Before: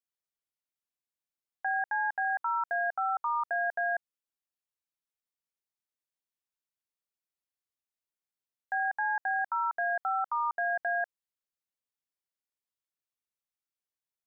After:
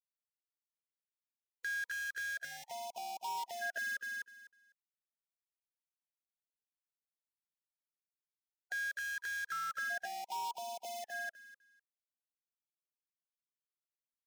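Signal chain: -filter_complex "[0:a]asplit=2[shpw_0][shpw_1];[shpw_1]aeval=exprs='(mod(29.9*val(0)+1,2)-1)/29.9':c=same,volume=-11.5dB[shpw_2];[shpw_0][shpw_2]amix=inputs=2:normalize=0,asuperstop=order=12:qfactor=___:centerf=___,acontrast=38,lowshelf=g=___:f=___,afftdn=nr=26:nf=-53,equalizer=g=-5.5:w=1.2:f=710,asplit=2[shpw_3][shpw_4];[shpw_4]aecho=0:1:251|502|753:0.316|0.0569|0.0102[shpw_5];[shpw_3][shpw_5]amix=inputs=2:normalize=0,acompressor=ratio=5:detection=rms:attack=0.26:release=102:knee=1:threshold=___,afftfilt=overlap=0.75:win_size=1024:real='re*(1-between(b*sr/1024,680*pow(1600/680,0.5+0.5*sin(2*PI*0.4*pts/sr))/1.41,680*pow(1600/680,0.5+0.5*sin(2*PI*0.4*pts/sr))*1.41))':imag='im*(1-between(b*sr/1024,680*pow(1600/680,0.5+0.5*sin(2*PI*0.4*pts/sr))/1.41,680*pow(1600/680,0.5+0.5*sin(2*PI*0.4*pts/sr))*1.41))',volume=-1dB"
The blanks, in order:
4.2, 1100, -9.5, 360, -31dB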